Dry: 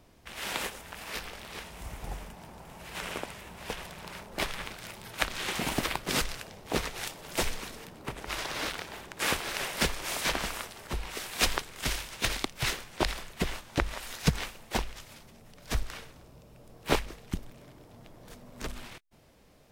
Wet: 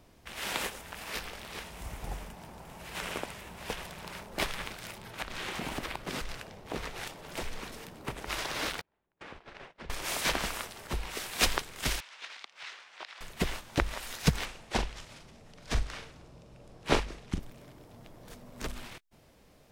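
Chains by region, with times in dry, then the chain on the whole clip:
4.98–7.72 s: compression 4:1, threshold -31 dBFS + treble shelf 4 kHz -7.5 dB
8.81–9.90 s: gate -35 dBFS, range -34 dB + compression 8:1, threshold -38 dBFS + tape spacing loss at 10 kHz 30 dB
12.00–13.21 s: high-pass 980 Hz + compression 2:1, threshold -45 dBFS + distance through air 130 m
14.45–17.40 s: low-pass 7.9 kHz + doubling 42 ms -9 dB
whole clip: none

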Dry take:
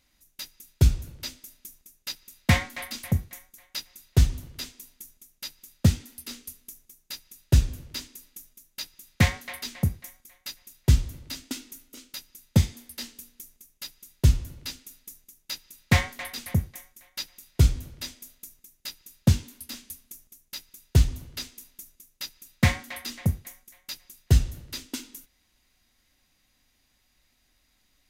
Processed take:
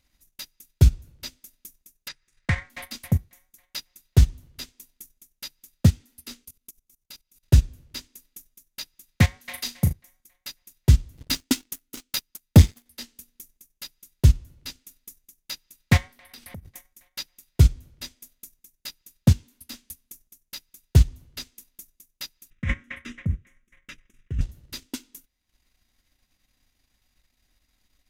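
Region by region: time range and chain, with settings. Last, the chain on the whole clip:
2.08–2.70 s: FFT filter 150 Hz 0 dB, 230 Hz -10 dB, 460 Hz -1 dB, 750 Hz -4 dB, 1.8 kHz +6 dB, 2.9 kHz -4 dB, 4.7 kHz -6 dB, 8.7 kHz -6 dB, 13 kHz -26 dB + compression 2.5:1, threshold -21 dBFS
6.45–7.43 s: band-stop 1.8 kHz, Q 8.5 + level held to a coarse grid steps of 14 dB
9.40–9.93 s: treble shelf 2.1 kHz +6 dB + flutter echo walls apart 6.4 m, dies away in 0.33 s
11.17–12.86 s: peaking EQ 640 Hz -5.5 dB 0.42 oct + waveshaping leveller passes 3
16.07–16.65 s: peaking EQ 6.9 kHz -7.5 dB 0.23 oct + compression 12:1, threshold -37 dBFS
22.50–24.41 s: compressor with a negative ratio -25 dBFS + distance through air 120 m + static phaser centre 1.9 kHz, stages 4
whole clip: bass shelf 140 Hz +5 dB; transient shaper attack +3 dB, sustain -10 dB; trim -2.5 dB

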